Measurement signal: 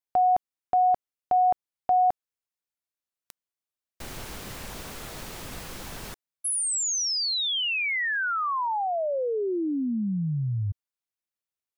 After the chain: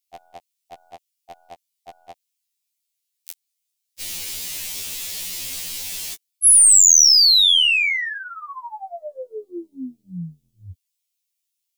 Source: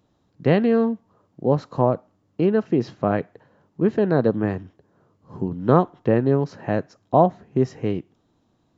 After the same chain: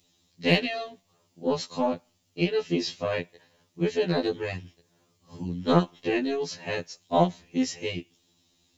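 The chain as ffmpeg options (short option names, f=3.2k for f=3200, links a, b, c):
-af "aexciter=amount=9.8:drive=2.2:freq=2.1k,aeval=exprs='1.19*(cos(1*acos(clip(val(0)/1.19,-1,1)))-cos(1*PI/2))+0.0299*(cos(2*acos(clip(val(0)/1.19,-1,1)))-cos(2*PI/2))+0.0299*(cos(7*acos(clip(val(0)/1.19,-1,1)))-cos(7*PI/2))':c=same,afftfilt=real='re*2*eq(mod(b,4),0)':imag='im*2*eq(mod(b,4),0)':win_size=2048:overlap=0.75,volume=-3dB"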